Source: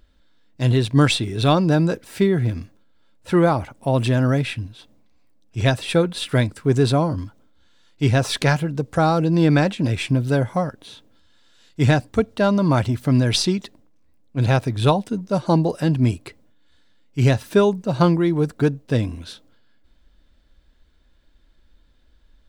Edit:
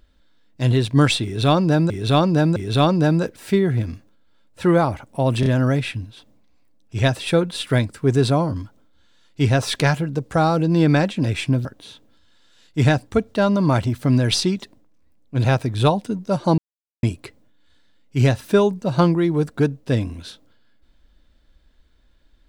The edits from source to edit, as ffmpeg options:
ffmpeg -i in.wav -filter_complex "[0:a]asplit=8[link_01][link_02][link_03][link_04][link_05][link_06][link_07][link_08];[link_01]atrim=end=1.902[link_09];[link_02]atrim=start=1.238:end=1.902[link_10];[link_03]atrim=start=1.238:end=4.112[link_11];[link_04]atrim=start=4.078:end=4.112[link_12];[link_05]atrim=start=4.078:end=10.272[link_13];[link_06]atrim=start=10.668:end=15.6,asetpts=PTS-STARTPTS,afade=type=out:start_time=4.928:duration=0.004:curve=hsin[link_14];[link_07]atrim=start=15.6:end=16.05,asetpts=PTS-STARTPTS,volume=0[link_15];[link_08]atrim=start=16.05,asetpts=PTS-STARTPTS,afade=type=in:duration=0.004:curve=hsin[link_16];[link_09][link_10]acrossfade=duration=0.004:curve1=hsin:curve2=hsin[link_17];[link_17][link_11]acrossfade=duration=0.004:curve1=hsin:curve2=hsin[link_18];[link_18][link_12]acrossfade=duration=0.004:curve1=hsin:curve2=hsin[link_19];[link_19][link_13]acrossfade=duration=0.004:curve1=hsin:curve2=hsin[link_20];[link_14][link_15][link_16]concat=n=3:v=0:a=1[link_21];[link_20][link_21]acrossfade=duration=0.004:curve1=hsin:curve2=hsin" out.wav

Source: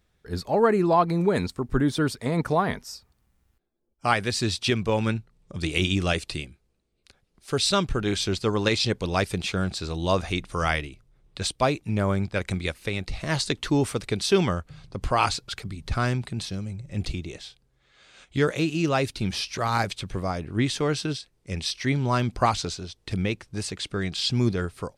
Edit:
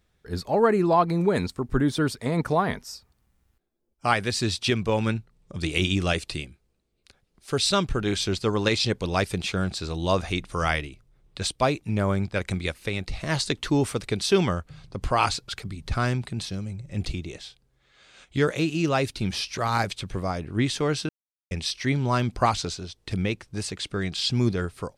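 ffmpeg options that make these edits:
ffmpeg -i in.wav -filter_complex "[0:a]asplit=3[link_01][link_02][link_03];[link_01]atrim=end=21.09,asetpts=PTS-STARTPTS,afade=type=out:start_time=21.086:duration=0.004:curve=hsin[link_04];[link_02]atrim=start=21.09:end=21.51,asetpts=PTS-STARTPTS,volume=0[link_05];[link_03]atrim=start=21.51,asetpts=PTS-STARTPTS,afade=type=in:duration=0.004:curve=hsin[link_06];[link_04][link_05][link_06]concat=n=3:v=0:a=1" out.wav

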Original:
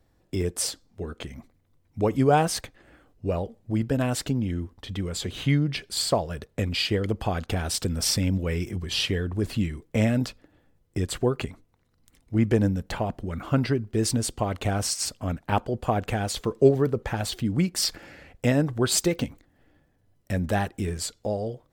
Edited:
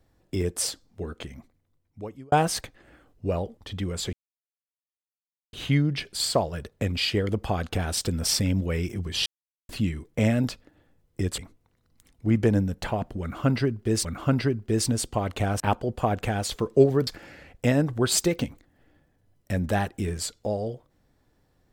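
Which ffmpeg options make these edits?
ffmpeg -i in.wav -filter_complex "[0:a]asplit=10[link_01][link_02][link_03][link_04][link_05][link_06][link_07][link_08][link_09][link_10];[link_01]atrim=end=2.32,asetpts=PTS-STARTPTS,afade=type=out:start_time=1.08:duration=1.24[link_11];[link_02]atrim=start=2.32:end=3.572,asetpts=PTS-STARTPTS,afade=type=in:duration=0.004:curve=hsin[link_12];[link_03]atrim=start=4.738:end=5.3,asetpts=PTS-STARTPTS,afade=type=out:start_time=0.558:duration=0.004:curve=hsin,apad=pad_dur=1.4[link_13];[link_04]atrim=start=5.3:end=9.03,asetpts=PTS-STARTPTS,afade=type=in:duration=0.004:curve=hsin,afade=type=out:start_time=3.726:duration=0.004:curve=hsin[link_14];[link_05]atrim=start=9.03:end=9.46,asetpts=PTS-STARTPTS,volume=0[link_15];[link_06]atrim=start=9.46:end=11.152,asetpts=PTS-STARTPTS,afade=type=in:duration=0.004:curve=hsin[link_16];[link_07]atrim=start=11.458:end=14.132[link_17];[link_08]atrim=start=13.298:end=14.852[link_18];[link_09]atrim=start=15.448:end=16.922[link_19];[link_10]atrim=start=17.868[link_20];[link_11][link_12]concat=n=2:v=0:a=1[link_21];[link_13][link_14][link_15][link_16]concat=n=4:v=0:a=1[link_22];[link_21][link_22]acrossfade=duration=0.004:curve1=hsin:curve2=hsin[link_23];[link_23][link_17]acrossfade=duration=0.004:curve1=hsin:curve2=hsin[link_24];[link_24][link_18]acrossfade=duration=0.004:curve1=hsin:curve2=hsin[link_25];[link_25][link_19]acrossfade=duration=0.004:curve1=hsin:curve2=hsin[link_26];[link_26][link_20]acrossfade=duration=0.004:curve1=hsin:curve2=hsin" out.wav

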